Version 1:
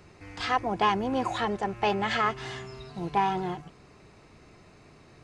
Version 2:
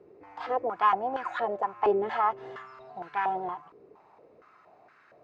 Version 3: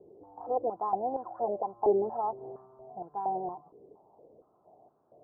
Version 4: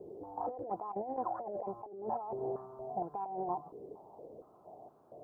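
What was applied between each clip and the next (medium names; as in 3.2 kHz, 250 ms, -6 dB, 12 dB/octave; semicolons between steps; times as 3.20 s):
step-sequenced band-pass 4.3 Hz 430–1500 Hz; trim +8 dB
steep low-pass 820 Hz 36 dB/octave
compressor with a negative ratio -39 dBFS, ratio -1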